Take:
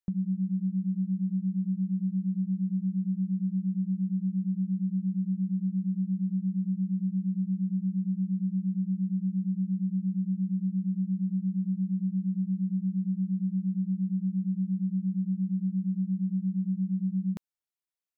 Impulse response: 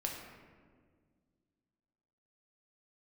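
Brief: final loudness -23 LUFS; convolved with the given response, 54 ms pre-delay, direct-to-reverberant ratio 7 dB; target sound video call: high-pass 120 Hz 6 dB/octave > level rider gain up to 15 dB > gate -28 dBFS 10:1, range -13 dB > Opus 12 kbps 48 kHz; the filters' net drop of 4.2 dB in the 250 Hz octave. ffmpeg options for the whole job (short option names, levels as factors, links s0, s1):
-filter_complex "[0:a]equalizer=f=250:t=o:g=-4.5,asplit=2[s0][s1];[1:a]atrim=start_sample=2205,adelay=54[s2];[s1][s2]afir=irnorm=-1:irlink=0,volume=0.376[s3];[s0][s3]amix=inputs=2:normalize=0,highpass=f=120:p=1,dynaudnorm=m=5.62,agate=range=0.224:threshold=0.0398:ratio=10,volume=1.41" -ar 48000 -c:a libopus -b:a 12k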